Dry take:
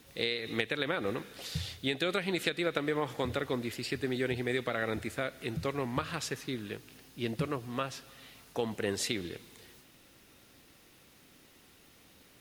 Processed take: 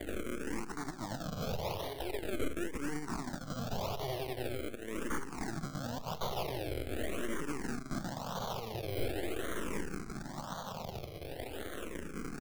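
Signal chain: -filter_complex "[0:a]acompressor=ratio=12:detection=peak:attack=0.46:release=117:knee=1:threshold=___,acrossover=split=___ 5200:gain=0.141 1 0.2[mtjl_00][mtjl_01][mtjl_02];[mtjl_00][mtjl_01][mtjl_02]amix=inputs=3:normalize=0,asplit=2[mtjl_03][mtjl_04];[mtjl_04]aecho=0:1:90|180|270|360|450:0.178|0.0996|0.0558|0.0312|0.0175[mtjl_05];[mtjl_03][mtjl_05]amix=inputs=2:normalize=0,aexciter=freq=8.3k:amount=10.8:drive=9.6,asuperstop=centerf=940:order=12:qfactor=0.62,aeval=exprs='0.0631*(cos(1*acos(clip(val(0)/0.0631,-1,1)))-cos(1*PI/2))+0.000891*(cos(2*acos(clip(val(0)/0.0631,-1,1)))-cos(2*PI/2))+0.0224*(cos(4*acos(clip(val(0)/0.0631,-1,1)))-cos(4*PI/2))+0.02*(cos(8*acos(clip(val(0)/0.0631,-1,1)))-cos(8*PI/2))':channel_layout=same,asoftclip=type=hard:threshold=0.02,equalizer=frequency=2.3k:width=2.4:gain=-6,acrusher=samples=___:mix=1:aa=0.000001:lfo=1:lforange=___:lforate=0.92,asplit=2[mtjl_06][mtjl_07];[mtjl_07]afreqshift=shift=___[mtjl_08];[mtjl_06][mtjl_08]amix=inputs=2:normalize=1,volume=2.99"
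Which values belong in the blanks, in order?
0.0141, 220, 33, 33, -0.43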